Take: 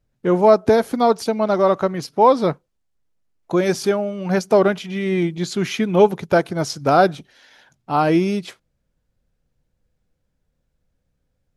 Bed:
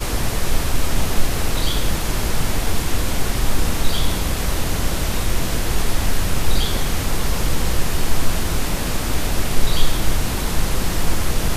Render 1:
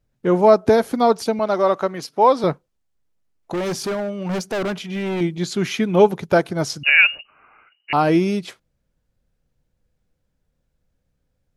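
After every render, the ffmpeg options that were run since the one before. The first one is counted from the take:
-filter_complex "[0:a]asettb=1/sr,asplit=3[s0][s1][s2];[s0]atrim=end=1.394[s3];[s1]atrim=start=1.39:end=2.44,asetpts=PTS-STARTPTS,afade=t=in:d=0.004:c=qsin,afade=t=out:st=1.046:d=0.004:c=qsin,highpass=f=340:p=1[s4];[s2]atrim=start=2.436[s5];[s3][s4]acrossfade=d=0.004:c1=hsin:c2=qsin[s6];[s6][s5]acrossfade=d=0.004:c1=qsin:c2=hsin,asettb=1/sr,asplit=3[s7][s8][s9];[s7]atrim=end=3.534[s10];[s8]atrim=start=3.53:end=5.21,asetpts=PTS-STARTPTS,afade=t=in:d=0.004:c=qsin,afade=t=out:st=1.676:d=0.004:c=qsin,volume=11.2,asoftclip=hard,volume=0.0891[s11];[s9]atrim=start=5.206[s12];[s10][s11]acrossfade=d=0.004:c1=hsin:c2=qsin[s13];[s13][s12]acrossfade=d=0.004:c1=qsin:c2=hsin,asettb=1/sr,asplit=3[s14][s15][s16];[s14]atrim=end=6.834[s17];[s15]atrim=start=6.83:end=7.93,asetpts=PTS-STARTPTS,afade=t=in:d=0.004:c=qsin,afade=t=out:st=1.096:d=0.004:c=qsin,lowpass=f=2600:t=q:w=0.5098,lowpass=f=2600:t=q:w=0.6013,lowpass=f=2600:t=q:w=0.9,lowpass=f=2600:t=q:w=2.563,afreqshift=-3000[s18];[s16]atrim=start=7.926[s19];[s17][s18]acrossfade=d=0.004:c1=hsin:c2=qsin[s20];[s20][s19]acrossfade=d=0.004:c1=qsin:c2=hsin"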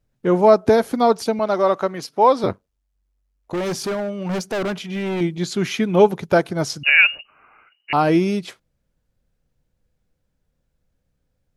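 -filter_complex "[0:a]asettb=1/sr,asplit=3[s0][s1][s2];[s0]atrim=end=2.454[s3];[s1]atrim=start=2.45:end=3.53,asetpts=PTS-STARTPTS,afade=t=in:d=0.004:c=qsin,afade=t=out:st=1.076:d=0.004:c=qsin,aeval=exprs='val(0)*sin(2*PI*48*n/s)':c=same[s4];[s2]atrim=start=3.526[s5];[s3][s4]acrossfade=d=0.004:c1=hsin:c2=qsin[s6];[s6][s5]acrossfade=d=0.004:c1=qsin:c2=hsin"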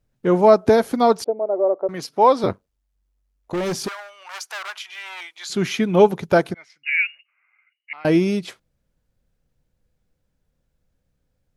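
-filter_complex "[0:a]asettb=1/sr,asplit=3[s0][s1][s2];[s0]atrim=end=1.244[s3];[s1]atrim=start=1.24:end=1.89,asetpts=PTS-STARTPTS,afade=t=in:d=0.004:c=qsin,afade=t=out:st=0.646:d=0.004:c=qsin,asuperpass=centerf=490:order=4:qfactor=1.4[s4];[s2]atrim=start=1.886[s5];[s3][s4]acrossfade=d=0.004:c1=hsin:c2=qsin[s6];[s6][s5]acrossfade=d=0.004:c1=qsin:c2=hsin,asettb=1/sr,asplit=3[s7][s8][s9];[s7]atrim=end=3.884[s10];[s8]atrim=start=3.88:end=5.5,asetpts=PTS-STARTPTS,afade=t=in:d=0.004:c=qsin,afade=t=out:st=1.616:d=0.004:c=qsin,highpass=f=970:w=0.5412,highpass=f=970:w=1.3066[s11];[s9]atrim=start=5.496[s12];[s10][s11]acrossfade=d=0.004:c1=hsin:c2=qsin[s13];[s13][s12]acrossfade=d=0.004:c1=qsin:c2=hsin,asettb=1/sr,asplit=3[s14][s15][s16];[s14]atrim=end=6.544[s17];[s15]atrim=start=6.54:end=8.05,asetpts=PTS-STARTPTS,afade=t=in:d=0.004:c=qsin,afade=t=out:st=1.506:d=0.004:c=qsin,bandpass=f=2100:t=q:w=9.6[s18];[s16]atrim=start=8.046[s19];[s17][s18]acrossfade=d=0.004:c1=hsin:c2=qsin[s20];[s20][s19]acrossfade=d=0.004:c1=qsin:c2=hsin"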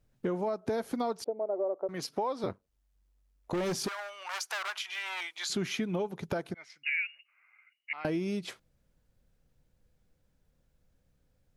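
-af "alimiter=limit=0.266:level=0:latency=1:release=372,acompressor=threshold=0.0224:ratio=3"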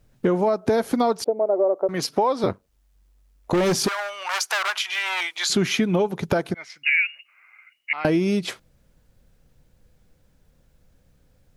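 -af "volume=3.76"

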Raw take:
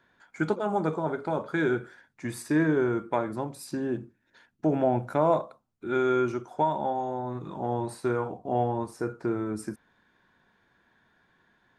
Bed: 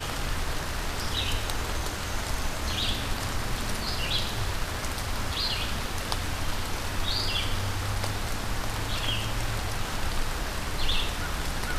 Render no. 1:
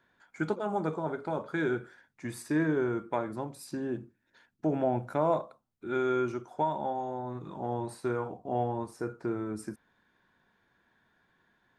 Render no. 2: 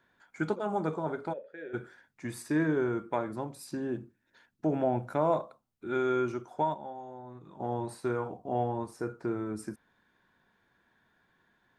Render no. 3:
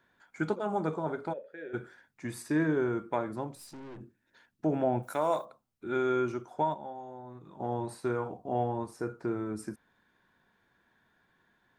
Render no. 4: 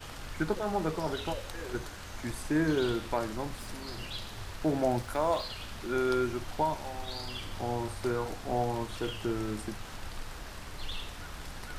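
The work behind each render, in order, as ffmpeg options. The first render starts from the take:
-af "volume=0.631"
-filter_complex "[0:a]asplit=3[s0][s1][s2];[s0]afade=t=out:st=1.32:d=0.02[s3];[s1]asplit=3[s4][s5][s6];[s4]bandpass=f=530:t=q:w=8,volume=1[s7];[s5]bandpass=f=1840:t=q:w=8,volume=0.501[s8];[s6]bandpass=f=2480:t=q:w=8,volume=0.355[s9];[s7][s8][s9]amix=inputs=3:normalize=0,afade=t=in:st=1.32:d=0.02,afade=t=out:st=1.73:d=0.02[s10];[s2]afade=t=in:st=1.73:d=0.02[s11];[s3][s10][s11]amix=inputs=3:normalize=0,asplit=3[s12][s13][s14];[s12]atrim=end=6.742[s15];[s13]atrim=start=6.738:end=7.602,asetpts=PTS-STARTPTS,volume=0.355[s16];[s14]atrim=start=7.598[s17];[s15][s16]acrossfade=d=0.004:c1=hsin:c2=hsin[s18];[s18][s17]acrossfade=d=0.004:c1=hsin:c2=hsin"
-filter_complex "[0:a]asettb=1/sr,asplit=3[s0][s1][s2];[s0]atrim=end=3.554[s3];[s1]atrim=start=3.55:end=4.01,asetpts=PTS-STARTPTS,afade=t=in:d=0.004:c=qsin,afade=t=out:st=0.456:d=0.004:c=qsin,aeval=exprs='(tanh(158*val(0)+0.4)-tanh(0.4))/158':c=same[s4];[s2]atrim=start=4.006[s5];[s3][s4]acrossfade=d=0.004:c1=hsin:c2=qsin[s6];[s6][s5]acrossfade=d=0.004:c1=qsin:c2=hsin,asplit=3[s7][s8][s9];[s7]afade=t=out:st=5.02:d=0.02[s10];[s8]aemphasis=mode=production:type=riaa,afade=t=in:st=5.02:d=0.02,afade=t=out:st=5.44:d=0.02[s11];[s9]afade=t=in:st=5.44:d=0.02[s12];[s10][s11][s12]amix=inputs=3:normalize=0"
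-filter_complex "[1:a]volume=0.251[s0];[0:a][s0]amix=inputs=2:normalize=0"

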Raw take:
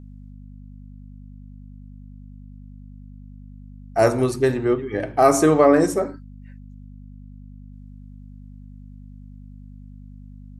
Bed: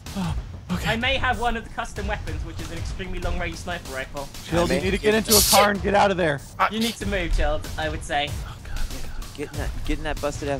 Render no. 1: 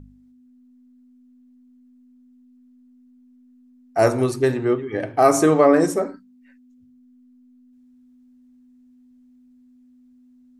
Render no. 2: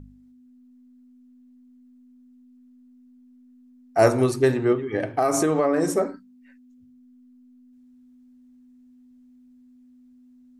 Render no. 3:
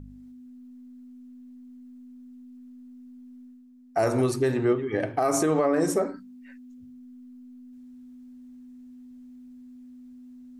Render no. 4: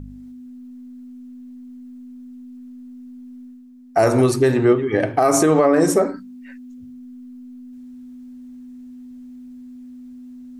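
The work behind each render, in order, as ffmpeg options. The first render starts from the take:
-af "bandreject=f=50:t=h:w=4,bandreject=f=100:t=h:w=4,bandreject=f=150:t=h:w=4,bandreject=f=200:t=h:w=4"
-filter_complex "[0:a]asettb=1/sr,asplit=3[s0][s1][s2];[s0]atrim=end=4.724[s3];[s1]atrim=start=4.72:end=5.9,asetpts=PTS-STARTPTS,afade=t=in:d=0.004:c=qsin,afade=t=out:st=1.176:d=0.004:c=qsin,acompressor=threshold=0.141:ratio=5:attack=3.2:release=140:knee=1:detection=peak[s4];[s2]atrim=start=5.896[s5];[s3][s4]acrossfade=d=0.004:c1=hsin:c2=qsin[s6];[s6][s5]acrossfade=d=0.004:c1=qsin:c2=hsin"
-af "alimiter=limit=0.2:level=0:latency=1:release=129,areverse,acompressor=mode=upward:threshold=0.01:ratio=2.5,areverse"
-af "volume=2.51"

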